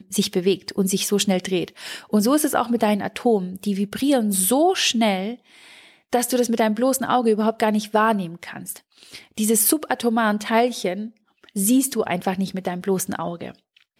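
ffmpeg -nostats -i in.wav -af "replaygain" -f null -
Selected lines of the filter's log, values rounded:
track_gain = +1.4 dB
track_peak = 0.360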